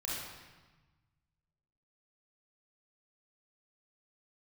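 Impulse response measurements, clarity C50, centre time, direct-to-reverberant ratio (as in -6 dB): -2.5 dB, 96 ms, -6.0 dB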